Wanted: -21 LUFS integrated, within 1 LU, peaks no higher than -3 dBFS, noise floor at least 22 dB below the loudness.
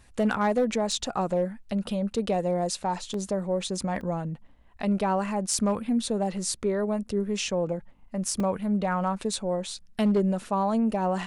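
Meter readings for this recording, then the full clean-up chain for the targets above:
clipped 0.4%; flat tops at -17.5 dBFS; dropouts 3; longest dropout 2.5 ms; loudness -28.0 LUFS; peak -17.5 dBFS; loudness target -21.0 LUFS
-> clip repair -17.5 dBFS; interpolate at 3.14/4.01/8.4, 2.5 ms; gain +7 dB

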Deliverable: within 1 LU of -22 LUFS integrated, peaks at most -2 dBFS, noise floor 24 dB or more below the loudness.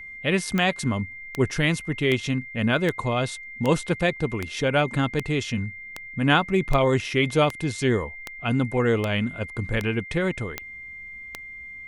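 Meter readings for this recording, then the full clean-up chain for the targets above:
clicks 15; steady tone 2100 Hz; tone level -37 dBFS; loudness -24.5 LUFS; peak -5.5 dBFS; loudness target -22.0 LUFS
-> de-click; notch 2100 Hz, Q 30; gain +2.5 dB

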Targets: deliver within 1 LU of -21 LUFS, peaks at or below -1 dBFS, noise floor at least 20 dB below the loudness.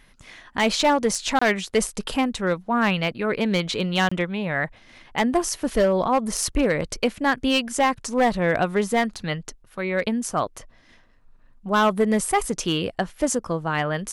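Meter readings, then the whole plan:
clipped 1.0%; flat tops at -13.0 dBFS; dropouts 2; longest dropout 25 ms; loudness -23.0 LUFS; peak -13.0 dBFS; loudness target -21.0 LUFS
-> clip repair -13 dBFS; interpolate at 1.39/4.09, 25 ms; gain +2 dB

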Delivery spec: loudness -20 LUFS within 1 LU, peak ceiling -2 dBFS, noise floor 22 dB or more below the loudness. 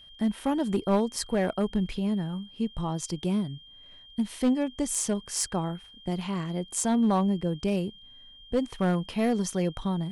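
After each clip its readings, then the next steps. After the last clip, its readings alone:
clipped 0.7%; flat tops at -18.0 dBFS; steady tone 3200 Hz; tone level -49 dBFS; loudness -28.5 LUFS; peak -18.0 dBFS; loudness target -20.0 LUFS
-> clip repair -18 dBFS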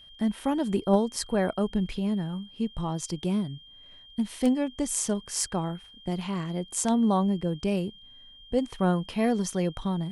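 clipped 0.0%; steady tone 3200 Hz; tone level -49 dBFS
-> notch 3200 Hz, Q 30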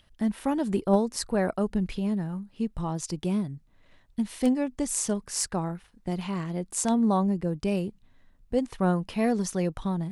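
steady tone none; loudness -28.5 LUFS; peak -9.0 dBFS; loudness target -20.0 LUFS
-> gain +8.5 dB; limiter -2 dBFS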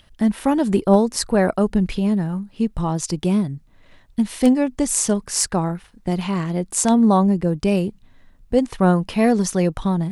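loudness -20.0 LUFS; peak -2.0 dBFS; noise floor -52 dBFS

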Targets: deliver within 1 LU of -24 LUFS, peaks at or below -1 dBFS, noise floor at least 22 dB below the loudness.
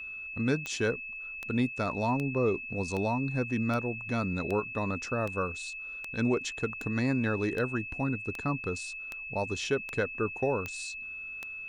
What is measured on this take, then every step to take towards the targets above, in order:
clicks 15; steady tone 2600 Hz; tone level -38 dBFS; loudness -31.5 LUFS; peak -15.0 dBFS; loudness target -24.0 LUFS
-> de-click; notch 2600 Hz, Q 30; gain +7.5 dB

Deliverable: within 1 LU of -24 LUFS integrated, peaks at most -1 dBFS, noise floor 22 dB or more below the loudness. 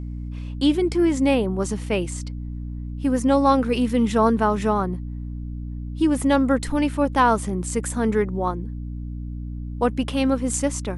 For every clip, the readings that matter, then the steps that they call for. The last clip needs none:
hum 60 Hz; harmonics up to 300 Hz; hum level -28 dBFS; loudness -22.0 LUFS; peak -5.5 dBFS; loudness target -24.0 LUFS
-> notches 60/120/180/240/300 Hz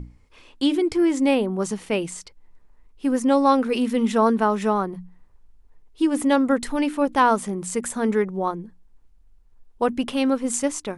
hum none; loudness -22.0 LUFS; peak -6.0 dBFS; loudness target -24.0 LUFS
-> gain -2 dB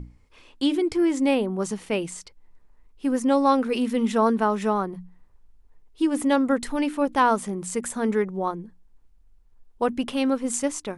loudness -24.0 LUFS; peak -8.0 dBFS; noise floor -56 dBFS

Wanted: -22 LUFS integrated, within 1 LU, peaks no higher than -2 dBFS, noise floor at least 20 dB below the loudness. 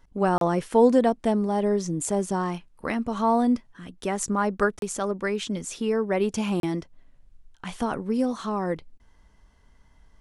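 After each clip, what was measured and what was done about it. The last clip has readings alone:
dropouts 3; longest dropout 32 ms; loudness -25.5 LUFS; peak -8.0 dBFS; loudness target -22.0 LUFS
-> interpolate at 0.38/4.79/6.6, 32 ms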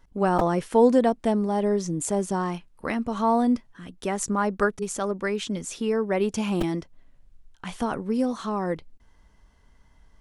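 dropouts 0; loudness -25.5 LUFS; peak -8.0 dBFS; loudness target -22.0 LUFS
-> gain +3.5 dB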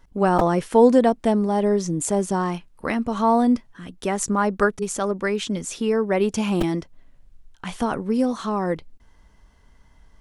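loudness -22.0 LUFS; peak -4.5 dBFS; noise floor -55 dBFS

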